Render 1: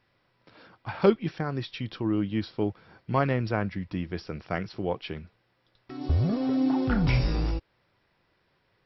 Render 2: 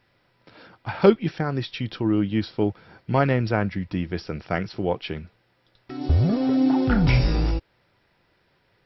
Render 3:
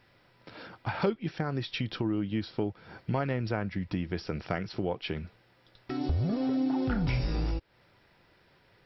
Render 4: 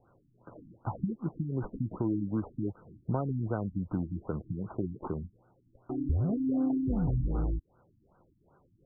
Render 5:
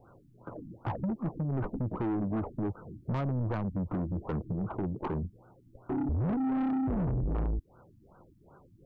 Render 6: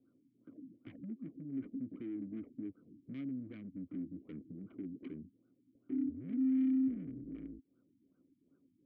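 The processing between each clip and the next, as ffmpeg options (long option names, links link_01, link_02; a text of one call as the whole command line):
ffmpeg -i in.wav -af "bandreject=frequency=1100:width=12,volume=5dB" out.wav
ffmpeg -i in.wav -af "acompressor=threshold=-32dB:ratio=3,volume=2dB" out.wav
ffmpeg -i in.wav -filter_complex "[0:a]acrossover=split=420[link_01][link_02];[link_02]acompressor=threshold=-31dB:ratio=6[link_03];[link_01][link_03]amix=inputs=2:normalize=0,acrusher=samples=13:mix=1:aa=0.000001,afftfilt=real='re*lt(b*sr/1024,300*pow(1600/300,0.5+0.5*sin(2*PI*2.6*pts/sr)))':imag='im*lt(b*sr/1024,300*pow(1600/300,0.5+0.5*sin(2*PI*2.6*pts/sr)))':win_size=1024:overlap=0.75" out.wav
ffmpeg -i in.wav -filter_complex "[0:a]asplit=2[link_01][link_02];[link_02]alimiter=level_in=1dB:limit=-24dB:level=0:latency=1:release=47,volume=-1dB,volume=0dB[link_03];[link_01][link_03]amix=inputs=2:normalize=0,asoftclip=type=tanh:threshold=-29dB,volume=1.5dB" out.wav
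ffmpeg -i in.wav -filter_complex "[0:a]asplit=3[link_01][link_02][link_03];[link_01]bandpass=frequency=270:width_type=q:width=8,volume=0dB[link_04];[link_02]bandpass=frequency=2290:width_type=q:width=8,volume=-6dB[link_05];[link_03]bandpass=frequency=3010:width_type=q:width=8,volume=-9dB[link_06];[link_04][link_05][link_06]amix=inputs=3:normalize=0" out.wav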